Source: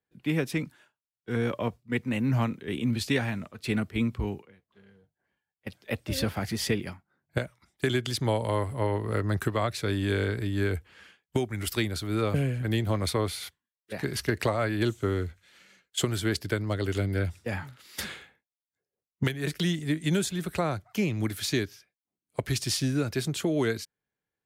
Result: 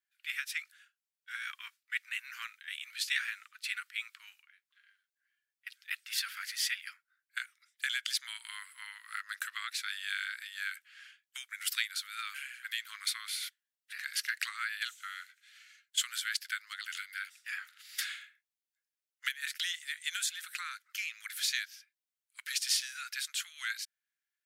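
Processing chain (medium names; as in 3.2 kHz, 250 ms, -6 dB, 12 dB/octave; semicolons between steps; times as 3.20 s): steep high-pass 1.4 kHz 48 dB/octave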